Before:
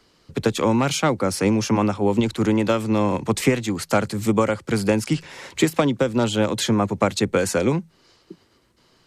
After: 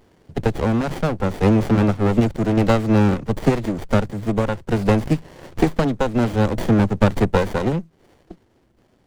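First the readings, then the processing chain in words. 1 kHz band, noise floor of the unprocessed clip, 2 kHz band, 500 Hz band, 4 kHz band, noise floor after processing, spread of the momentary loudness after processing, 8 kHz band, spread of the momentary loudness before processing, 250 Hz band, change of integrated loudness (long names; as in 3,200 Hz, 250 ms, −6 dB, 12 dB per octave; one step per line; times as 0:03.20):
0.0 dB, −60 dBFS, −1.0 dB, 0.0 dB, −6.5 dB, −60 dBFS, 7 LU, −12.0 dB, 4 LU, +2.0 dB, +1.5 dB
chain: sample-and-hold tremolo
windowed peak hold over 33 samples
level +6 dB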